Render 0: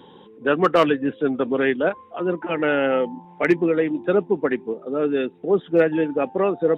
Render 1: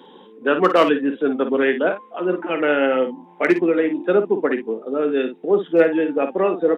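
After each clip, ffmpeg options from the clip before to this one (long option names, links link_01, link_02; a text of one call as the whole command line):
ffmpeg -i in.wav -filter_complex "[0:a]highpass=frequency=200:width=0.5412,highpass=frequency=200:width=1.3066,asplit=2[link_01][link_02];[link_02]aecho=0:1:22|54:0.188|0.355[link_03];[link_01][link_03]amix=inputs=2:normalize=0,volume=1.5dB" out.wav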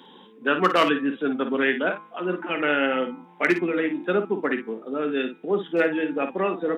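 ffmpeg -i in.wav -af "equalizer=frequency=490:width_type=o:width=1.9:gain=-9,bandreject=frequency=164.2:width_type=h:width=4,bandreject=frequency=328.4:width_type=h:width=4,bandreject=frequency=492.6:width_type=h:width=4,bandreject=frequency=656.8:width_type=h:width=4,bandreject=frequency=821:width_type=h:width=4,bandreject=frequency=985.2:width_type=h:width=4,bandreject=frequency=1149.4:width_type=h:width=4,bandreject=frequency=1313.6:width_type=h:width=4,bandreject=frequency=1477.8:width_type=h:width=4,bandreject=frequency=1642:width_type=h:width=4,bandreject=frequency=1806.2:width_type=h:width=4,bandreject=frequency=1970.4:width_type=h:width=4,bandreject=frequency=2134.6:width_type=h:width=4,bandreject=frequency=2298.8:width_type=h:width=4,bandreject=frequency=2463:width_type=h:width=4,volume=1.5dB" out.wav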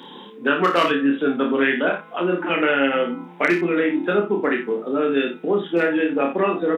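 ffmpeg -i in.wav -filter_complex "[0:a]acompressor=threshold=-29dB:ratio=2,asplit=2[link_01][link_02];[link_02]aecho=0:1:29|65:0.668|0.158[link_03];[link_01][link_03]amix=inputs=2:normalize=0,volume=7.5dB" out.wav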